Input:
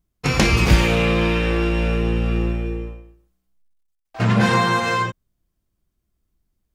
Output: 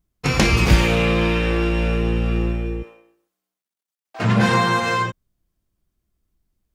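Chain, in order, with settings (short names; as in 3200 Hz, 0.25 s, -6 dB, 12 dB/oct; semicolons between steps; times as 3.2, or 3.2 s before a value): 2.82–4.23 HPF 560 Hz -> 220 Hz 12 dB/oct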